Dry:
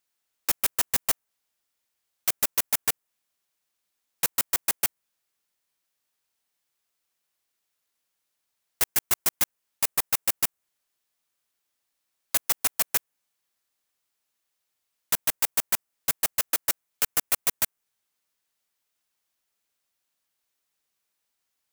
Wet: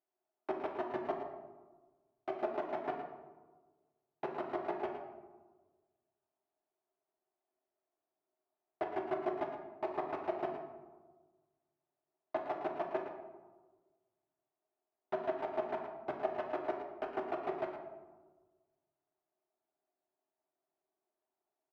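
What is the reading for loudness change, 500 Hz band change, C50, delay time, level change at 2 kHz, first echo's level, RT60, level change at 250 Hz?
-14.5 dB, +6.5 dB, 4.0 dB, 113 ms, -14.0 dB, -9.5 dB, 1.4 s, +3.5 dB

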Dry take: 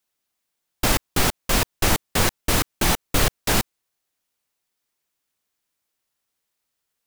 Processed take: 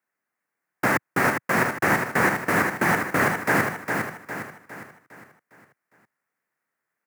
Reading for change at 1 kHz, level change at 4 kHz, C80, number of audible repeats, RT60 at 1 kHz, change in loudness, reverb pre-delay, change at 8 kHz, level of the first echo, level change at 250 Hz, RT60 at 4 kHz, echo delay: +3.5 dB, -14.0 dB, no reverb, 5, no reverb, -1.0 dB, no reverb, -10.5 dB, -5.0 dB, +1.5 dB, no reverb, 407 ms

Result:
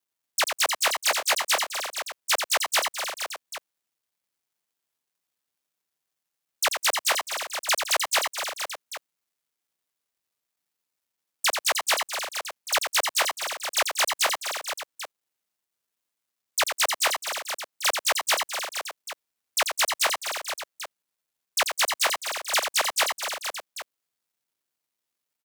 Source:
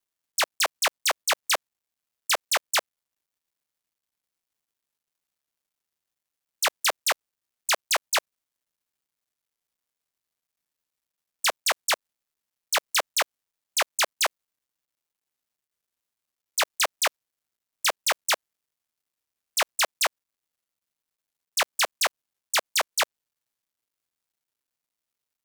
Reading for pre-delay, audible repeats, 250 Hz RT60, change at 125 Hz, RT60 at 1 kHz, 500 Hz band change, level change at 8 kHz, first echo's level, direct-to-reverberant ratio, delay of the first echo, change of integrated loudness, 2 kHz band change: no reverb, 6, no reverb, no reading, no reverb, +1.5 dB, +2.0 dB, -6.5 dB, no reverb, 88 ms, +0.5 dB, +2.0 dB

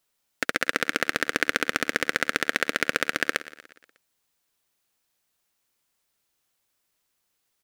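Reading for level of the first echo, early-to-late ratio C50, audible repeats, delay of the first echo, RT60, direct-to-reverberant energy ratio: -16.5 dB, no reverb, 4, 120 ms, no reverb, no reverb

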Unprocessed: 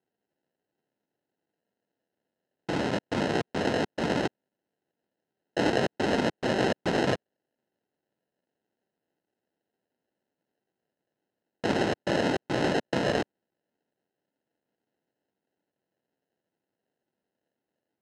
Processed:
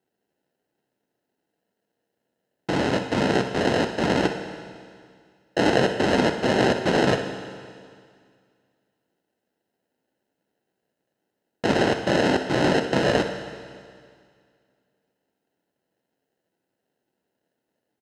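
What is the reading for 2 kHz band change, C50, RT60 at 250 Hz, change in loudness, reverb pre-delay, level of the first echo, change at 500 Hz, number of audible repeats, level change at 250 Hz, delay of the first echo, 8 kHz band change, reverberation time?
+6.0 dB, 6.5 dB, 2.1 s, +5.5 dB, 15 ms, -12.0 dB, +6.0 dB, 1, +5.5 dB, 62 ms, +6.0 dB, 2.1 s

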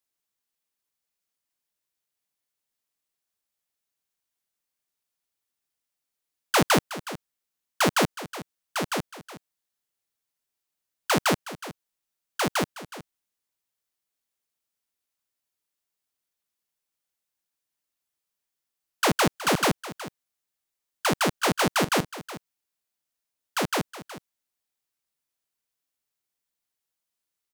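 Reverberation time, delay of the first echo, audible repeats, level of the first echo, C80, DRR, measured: no reverb, 368 ms, 1, -15.0 dB, no reverb, no reverb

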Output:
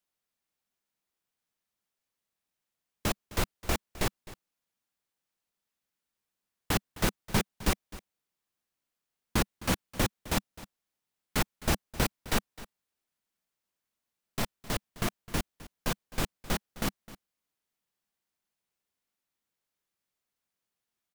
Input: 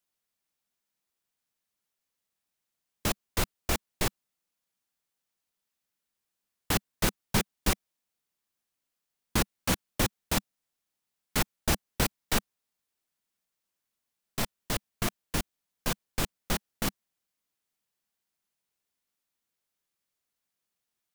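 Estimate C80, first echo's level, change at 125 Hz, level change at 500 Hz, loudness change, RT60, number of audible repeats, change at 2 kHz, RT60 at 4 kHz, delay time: no reverb, -18.0 dB, 0.0 dB, 0.0 dB, -1.5 dB, no reverb, 1, -1.0 dB, no reverb, 260 ms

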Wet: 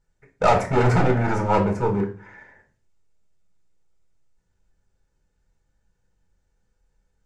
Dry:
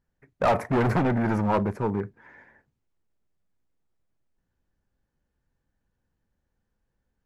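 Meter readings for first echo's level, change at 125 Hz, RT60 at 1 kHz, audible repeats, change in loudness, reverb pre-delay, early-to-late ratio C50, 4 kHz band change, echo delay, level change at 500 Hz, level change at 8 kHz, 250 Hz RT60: no echo, +5.0 dB, 0.40 s, no echo, +4.0 dB, 5 ms, 10.5 dB, +6.0 dB, no echo, +5.0 dB, no reading, 0.55 s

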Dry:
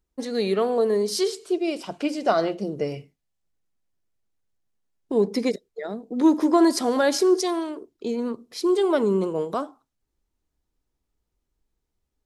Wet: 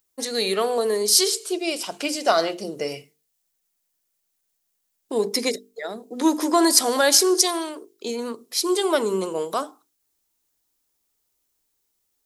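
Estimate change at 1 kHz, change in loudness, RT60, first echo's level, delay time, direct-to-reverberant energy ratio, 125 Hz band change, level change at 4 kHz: +2.5 dB, +2.0 dB, no reverb, no echo, no echo, no reverb, no reading, +10.5 dB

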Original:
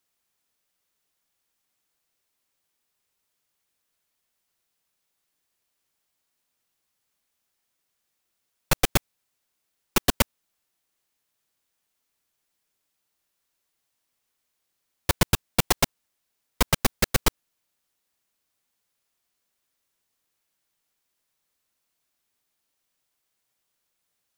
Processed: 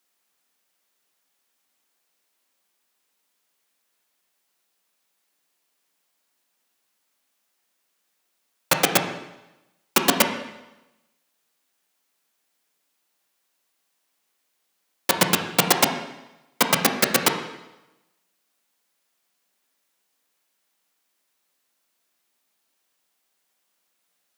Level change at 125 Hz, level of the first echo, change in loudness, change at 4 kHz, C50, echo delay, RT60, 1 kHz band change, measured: -4.0 dB, no echo, +4.5 dB, +5.0 dB, 7.0 dB, no echo, 1.0 s, +6.5 dB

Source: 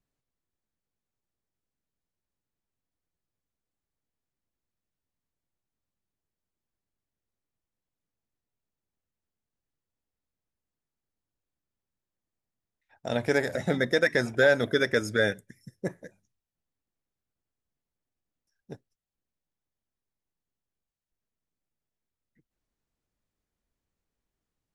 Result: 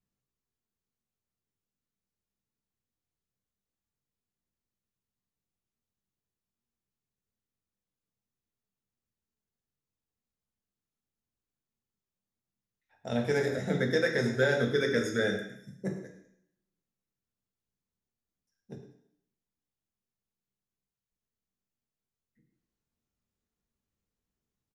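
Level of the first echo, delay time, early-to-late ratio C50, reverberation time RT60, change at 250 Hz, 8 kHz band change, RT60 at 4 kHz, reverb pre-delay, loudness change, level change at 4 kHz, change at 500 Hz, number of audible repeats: -14.0 dB, 107 ms, 6.0 dB, 0.70 s, -0.5 dB, -2.5 dB, 0.70 s, 3 ms, -4.0 dB, -3.5 dB, -3.0 dB, 1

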